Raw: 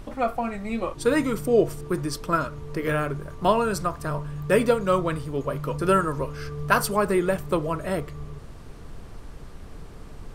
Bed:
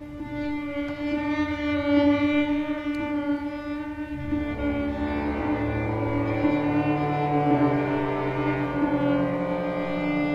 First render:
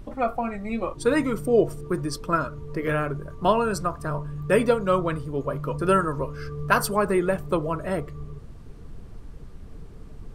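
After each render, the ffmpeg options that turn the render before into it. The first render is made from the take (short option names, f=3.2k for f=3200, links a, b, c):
-af "afftdn=nr=8:nf=-41"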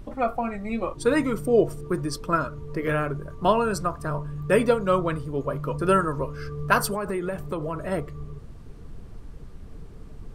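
-filter_complex "[0:a]asettb=1/sr,asplit=3[a][b][c];[a]atrim=end=6.944[d];[b]atrim=start=6.94:end=7.92,asetpts=PTS-STARTPTS,afade=t=in:d=0.004:c=qsin,afade=t=out:st=0.976:d=0.004:c=qsin,acompressor=threshold=-25dB:ratio=4:attack=3.2:release=140:knee=1:detection=peak[e];[c]atrim=start=7.916[f];[d][e]acrossfade=d=0.004:c1=hsin:c2=qsin[g];[g][f]acrossfade=d=0.004:c1=qsin:c2=hsin"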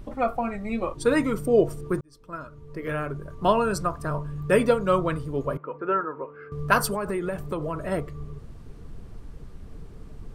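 -filter_complex "[0:a]asettb=1/sr,asplit=3[a][b][c];[a]atrim=end=5.574[d];[b]atrim=start=5.57:end=6.52,asetpts=PTS-STARTPTS,afade=t=in:d=0.004:c=qsin,afade=t=out:st=0.946:d=0.004:c=qsin,highpass=420,equalizer=f=630:t=q:w=4:g=-9,equalizer=f=1.1k:t=q:w=4:g=-5,equalizer=f=1.8k:t=q:w=4:g=-5,lowpass=f=2k:w=0.5412,lowpass=f=2k:w=1.3066[e];[c]atrim=start=6.516[f];[d][e]acrossfade=d=0.004:c1=hsin:c2=qsin[g];[g][f]acrossfade=d=0.004:c1=qsin:c2=hsin,asplit=2[h][i];[h]atrim=end=2.01,asetpts=PTS-STARTPTS,afade=t=out:st=2.006:d=0.004:c=hsin[j];[i]atrim=start=2.01,asetpts=PTS-STARTPTS,afade=t=in:d=1.55[k];[j][k]concat=n=2:v=0:a=1"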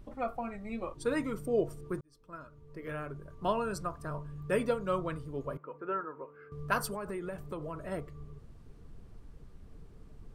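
-af "volume=-10dB"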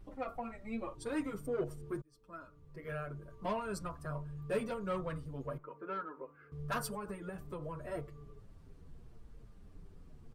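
-filter_complex "[0:a]asoftclip=type=tanh:threshold=-25.5dB,asplit=2[a][b];[b]adelay=7.2,afreqshift=-0.83[c];[a][c]amix=inputs=2:normalize=1"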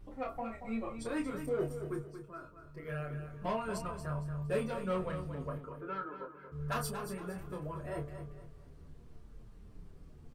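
-filter_complex "[0:a]asplit=2[a][b];[b]adelay=27,volume=-5dB[c];[a][c]amix=inputs=2:normalize=0,aecho=1:1:231|462|693|924:0.335|0.114|0.0387|0.0132"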